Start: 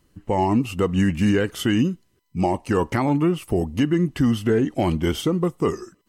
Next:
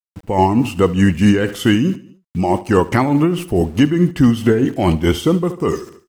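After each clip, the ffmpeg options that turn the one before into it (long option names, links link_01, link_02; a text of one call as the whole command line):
ffmpeg -i in.wav -af "aeval=exprs='val(0)*gte(abs(val(0)),0.00668)':channel_layout=same,aecho=1:1:73|146|219|292:0.168|0.0789|0.0371|0.0174,tremolo=f=4.7:d=0.51,volume=8dB" out.wav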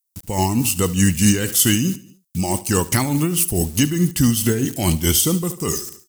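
ffmpeg -i in.wav -af "bass=frequency=250:gain=9,treble=frequency=4000:gain=11,crystalizer=i=6:c=0,volume=-10dB" out.wav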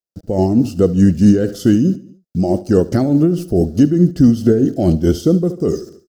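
ffmpeg -i in.wav -af "firequalizer=gain_entry='entry(130,0);entry(180,4);entry(330,7);entry(640,8);entry(960,-16);entry(1400,-4);entry(2200,-20);entry(4800,-9);entry(8400,-26)':delay=0.05:min_phase=1,volume=2dB" out.wav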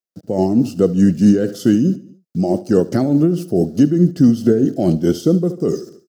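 ffmpeg -i in.wav -af "highpass=frequency=120:width=0.5412,highpass=frequency=120:width=1.3066,volume=-1dB" out.wav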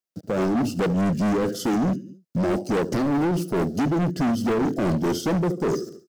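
ffmpeg -i in.wav -af "volume=20dB,asoftclip=hard,volume=-20dB" out.wav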